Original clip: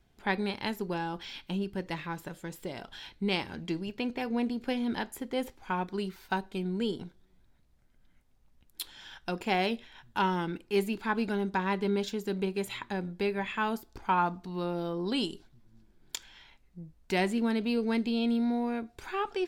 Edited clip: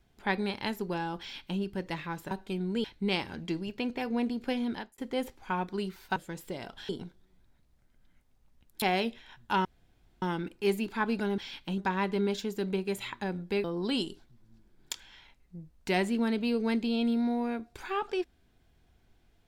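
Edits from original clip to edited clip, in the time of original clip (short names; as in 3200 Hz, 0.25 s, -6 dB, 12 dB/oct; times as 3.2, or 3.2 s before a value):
1.2–1.6 copy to 11.47
2.31–3.04 swap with 6.36–6.89
4.83–5.18 fade out
8.82–9.48 cut
10.31 insert room tone 0.57 s
13.33–14.87 cut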